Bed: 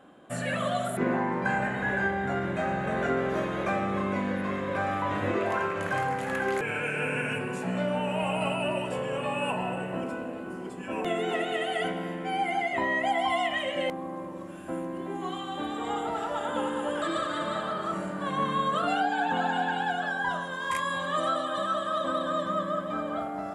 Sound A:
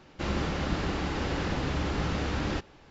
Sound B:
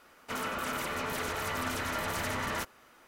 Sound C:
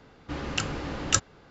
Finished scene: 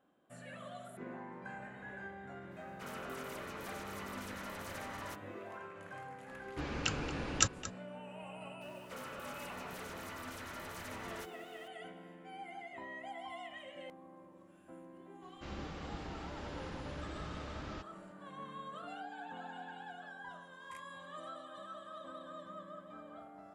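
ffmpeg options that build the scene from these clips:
-filter_complex "[2:a]asplit=2[a][b];[0:a]volume=-19.5dB[c];[3:a]asplit=2[d][e];[e]adelay=227.4,volume=-13dB,highshelf=f=4k:g=-5.12[f];[d][f]amix=inputs=2:normalize=0[g];[b]aeval=exprs='val(0)+0.5*0.00501*sgn(val(0))':c=same[h];[a]atrim=end=3.07,asetpts=PTS-STARTPTS,volume=-12.5dB,afade=t=in:d=0.004:c=hsin,afade=t=out:st=3.066:d=0.004:c=hsin,adelay=2510[i];[g]atrim=end=1.5,asetpts=PTS-STARTPTS,volume=-6dB,afade=t=in:d=0.004:c=hsin,afade=t=out:st=1.496:d=0.004:c=hsin,adelay=6280[j];[h]atrim=end=3.07,asetpts=PTS-STARTPTS,volume=-13.5dB,afade=t=in:d=0.004:c=hsin,afade=t=out:st=3.066:d=0.004:c=hsin,adelay=8610[k];[1:a]atrim=end=2.9,asetpts=PTS-STARTPTS,volume=-15dB,afade=t=in:d=0.004:c=hsin,afade=t=out:st=2.896:d=0.004:c=hsin,adelay=15220[l];[c][i][j][k][l]amix=inputs=5:normalize=0"

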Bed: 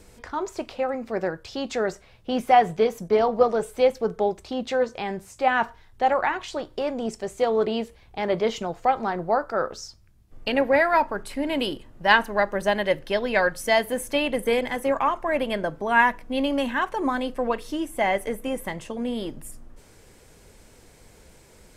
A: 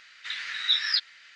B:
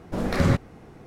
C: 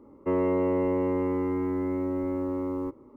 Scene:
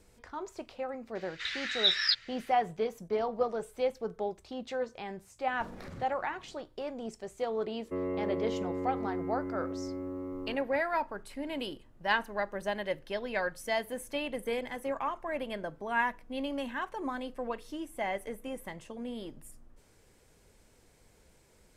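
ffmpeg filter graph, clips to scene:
-filter_complex "[0:a]volume=-11dB[a];[2:a]acompressor=threshold=-29dB:ratio=6:attack=3.2:release=140:knee=1:detection=peak[b];[3:a]bandreject=f=910:w=5.9[c];[1:a]atrim=end=1.35,asetpts=PTS-STARTPTS,volume=-2dB,afade=t=in:d=0.004:c=hsin,afade=t=out:st=1.346:d=0.004:c=hsin,adelay=1150[d];[b]atrim=end=1.06,asetpts=PTS-STARTPTS,volume=-12.5dB,afade=t=in:d=0.004:c=hsin,afade=t=out:st=1.056:d=0.004:c=hsin,adelay=5480[e];[c]atrim=end=3.16,asetpts=PTS-STARTPTS,volume=-8.5dB,afade=t=in:d=0.004:c=hsin,afade=t=out:st=3.156:d=0.004:c=hsin,adelay=7650[f];[a][d][e][f]amix=inputs=4:normalize=0"

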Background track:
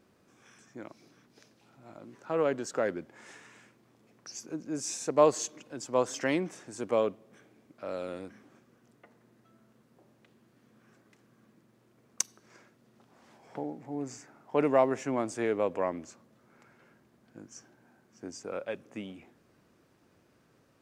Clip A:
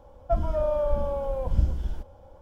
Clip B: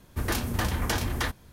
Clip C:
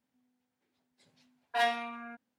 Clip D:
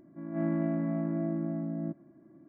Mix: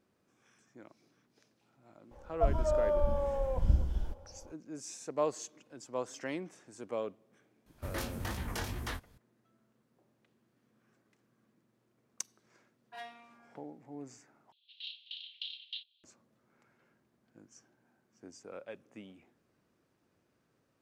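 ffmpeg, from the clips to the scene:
-filter_complex "[2:a]asplit=2[a][b];[0:a]volume=-9.5dB[c];[a]flanger=delay=16:depth=7.7:speed=2.6[d];[b]asuperpass=centerf=3400:order=8:qfactor=2.5[e];[c]asplit=2[f][g];[f]atrim=end=14.524[h];[e]atrim=end=1.52,asetpts=PTS-STARTPTS,volume=-2.5dB[i];[g]atrim=start=16.036[j];[1:a]atrim=end=2.41,asetpts=PTS-STARTPTS,volume=-4dB,afade=t=in:d=0.004:c=hsin,afade=t=out:st=2.406:d=0.004:c=hsin,adelay=2110[k];[d]atrim=end=1.52,asetpts=PTS-STARTPTS,volume=-7dB,afade=t=in:d=0.004:c=hsin,afade=t=out:st=1.516:d=0.004:c=hsin,adelay=7660[l];[3:a]atrim=end=2.38,asetpts=PTS-STARTPTS,volume=-18dB,afade=t=in:d=0.004:c=hsin,afade=t=out:st=2.376:d=0.004:c=hsin,adelay=501858S[m];[h][i]acrossfade=d=0.004:c1=hsin:c2=hsin[n];[n][j]acrossfade=d=0.004:c1=hsin:c2=hsin[o];[o][k][l][m]amix=inputs=4:normalize=0"

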